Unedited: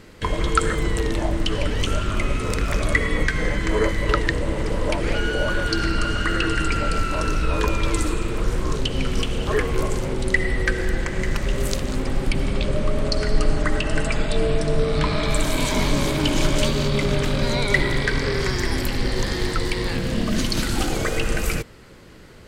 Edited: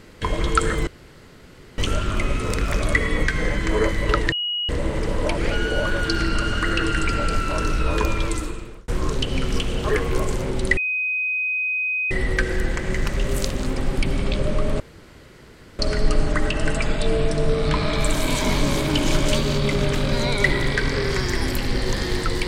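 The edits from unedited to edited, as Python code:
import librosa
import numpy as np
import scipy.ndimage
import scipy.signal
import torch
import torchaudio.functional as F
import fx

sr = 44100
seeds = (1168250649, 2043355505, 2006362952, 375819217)

y = fx.edit(x, sr, fx.room_tone_fill(start_s=0.87, length_s=0.91),
    fx.insert_tone(at_s=4.32, length_s=0.37, hz=2900.0, db=-22.0),
    fx.fade_out_span(start_s=7.73, length_s=0.78),
    fx.insert_tone(at_s=10.4, length_s=1.34, hz=2510.0, db=-20.5),
    fx.insert_room_tone(at_s=13.09, length_s=0.99), tone=tone)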